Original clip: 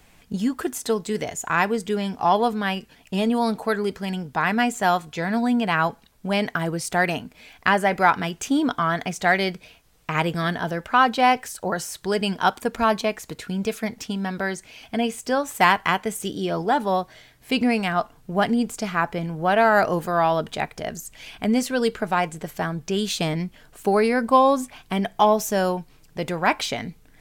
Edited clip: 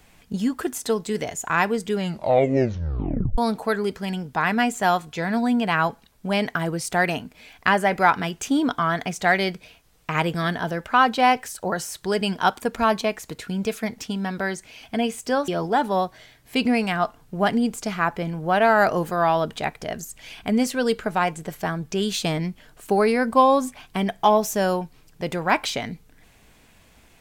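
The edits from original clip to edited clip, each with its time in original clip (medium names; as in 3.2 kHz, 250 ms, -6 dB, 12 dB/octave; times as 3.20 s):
1.95 s: tape stop 1.43 s
15.48–16.44 s: delete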